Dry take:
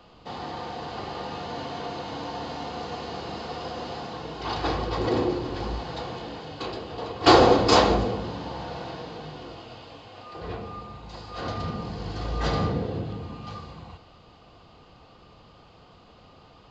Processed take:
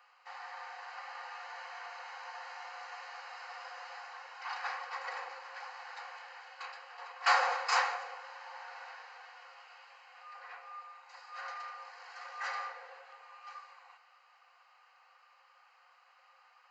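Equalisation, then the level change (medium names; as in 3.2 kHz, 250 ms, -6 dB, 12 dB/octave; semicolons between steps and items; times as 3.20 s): rippled Chebyshev high-pass 520 Hz, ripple 6 dB; peaking EQ 3.7 kHz +10.5 dB 0.25 oct; static phaser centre 1.5 kHz, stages 4; 0.0 dB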